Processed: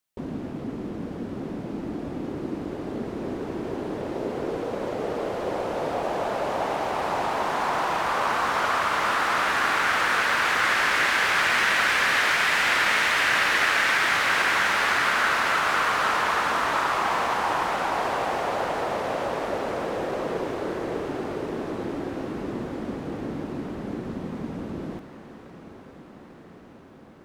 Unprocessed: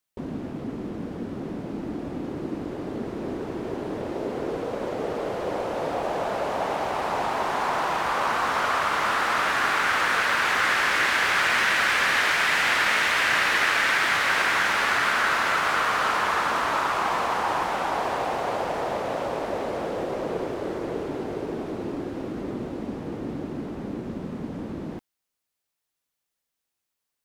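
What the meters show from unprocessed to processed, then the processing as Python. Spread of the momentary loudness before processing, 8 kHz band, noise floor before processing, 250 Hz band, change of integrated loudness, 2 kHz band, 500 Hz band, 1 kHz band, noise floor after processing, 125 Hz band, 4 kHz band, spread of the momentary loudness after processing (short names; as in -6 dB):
13 LU, +0.5 dB, -83 dBFS, 0.0 dB, +0.5 dB, +0.5 dB, +0.5 dB, +0.5 dB, -46 dBFS, +0.5 dB, +0.5 dB, 13 LU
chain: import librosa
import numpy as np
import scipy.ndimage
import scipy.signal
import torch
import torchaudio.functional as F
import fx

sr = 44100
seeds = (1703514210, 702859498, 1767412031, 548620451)

y = fx.echo_diffused(x, sr, ms=987, feedback_pct=71, wet_db=-15.0)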